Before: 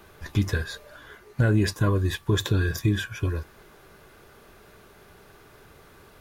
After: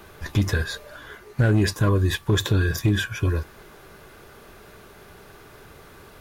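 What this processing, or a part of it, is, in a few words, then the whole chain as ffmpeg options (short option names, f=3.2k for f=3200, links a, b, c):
clipper into limiter: -af "asoftclip=type=hard:threshold=-15.5dB,alimiter=limit=-18dB:level=0:latency=1:release=51,volume=5dB"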